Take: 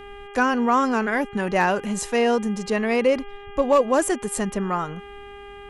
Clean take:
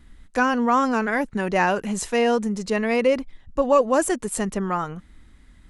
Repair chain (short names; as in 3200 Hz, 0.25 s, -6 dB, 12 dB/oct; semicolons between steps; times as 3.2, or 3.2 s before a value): clip repair -10 dBFS; de-hum 404 Hz, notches 8